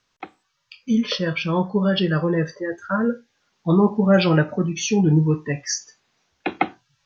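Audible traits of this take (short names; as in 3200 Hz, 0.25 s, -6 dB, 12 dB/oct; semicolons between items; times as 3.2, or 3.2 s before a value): noise floor -71 dBFS; spectral tilt -5.5 dB/oct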